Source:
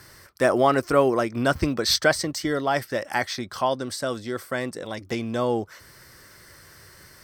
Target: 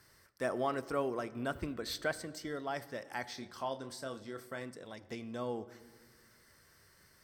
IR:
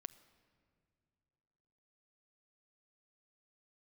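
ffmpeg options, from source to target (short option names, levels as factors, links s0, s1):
-filter_complex "[0:a]asettb=1/sr,asplit=3[s0][s1][s2];[s0]atrim=end=1.314[s3];[s1]atrim=start=1.31:end=2.37,asetpts=PTS-STARTPTS,afade=t=in:d=0.004:c=qsin,afade=t=out:st=1.056:d=0.004:c=qsin,equalizer=f=5400:t=o:w=0.52:g=-9[s4];[s2]atrim=start=2.366[s5];[s3][s4]acrossfade=d=0.004:c1=hsin:c2=qsin[s6];[s6][s5]acrossfade=d=0.004:c1=qsin:c2=hsin,asettb=1/sr,asplit=3[s7][s8][s9];[s7]atrim=end=3.244[s10];[s8]atrim=start=3.24:end=4.63,asetpts=PTS-STARTPTS,afade=t=in:d=0.004:c=qsin,afade=t=out:st=1.386:d=0.004:c=qsin,asplit=2[s11][s12];[s12]adelay=30,volume=0.335[s13];[s11][s13]amix=inputs=2:normalize=0,atrim=end_sample=61299[s14];[s9]atrim=start=4.626[s15];[s10][s14]acrossfade=d=0.004:c1=hsin:c2=qsin[s16];[s16][s15]acrossfade=d=0.004:c1=qsin:c2=hsin[s17];[1:a]atrim=start_sample=2205,asetrate=66150,aresample=44100[s18];[s17][s18]afir=irnorm=-1:irlink=0,volume=0.473"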